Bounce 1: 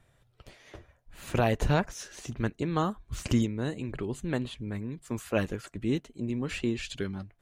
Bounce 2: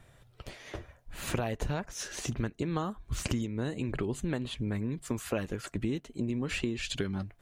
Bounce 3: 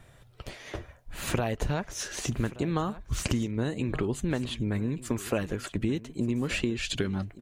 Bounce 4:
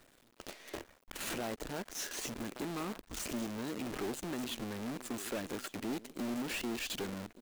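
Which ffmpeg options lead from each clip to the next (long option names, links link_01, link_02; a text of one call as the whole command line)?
ffmpeg -i in.wav -af "acompressor=threshold=-35dB:ratio=10,volume=6.5dB" out.wav
ffmpeg -i in.wav -af "aecho=1:1:1177:0.133,volume=3.5dB" out.wav
ffmpeg -i in.wav -af "aeval=exprs='(tanh(39.8*val(0)+0.25)-tanh(0.25))/39.8':channel_layout=same,acrusher=bits=7:dc=4:mix=0:aa=0.000001,lowshelf=frequency=180:width_type=q:width=1.5:gain=-9.5,volume=-3dB" out.wav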